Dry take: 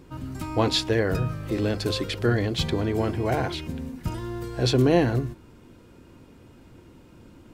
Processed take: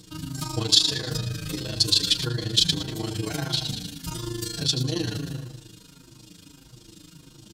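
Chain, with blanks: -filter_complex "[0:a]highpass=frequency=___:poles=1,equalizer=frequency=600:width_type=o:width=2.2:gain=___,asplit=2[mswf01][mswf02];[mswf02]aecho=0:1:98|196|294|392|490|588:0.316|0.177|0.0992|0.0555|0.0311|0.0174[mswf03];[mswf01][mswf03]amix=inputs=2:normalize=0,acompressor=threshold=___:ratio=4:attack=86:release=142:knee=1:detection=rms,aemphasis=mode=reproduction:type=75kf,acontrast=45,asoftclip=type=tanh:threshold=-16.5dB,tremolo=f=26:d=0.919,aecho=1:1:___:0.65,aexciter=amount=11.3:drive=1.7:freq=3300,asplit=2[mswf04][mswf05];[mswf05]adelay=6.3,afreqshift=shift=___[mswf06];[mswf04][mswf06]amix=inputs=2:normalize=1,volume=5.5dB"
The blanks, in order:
110, -12.5, -35dB, 6.4, -1.6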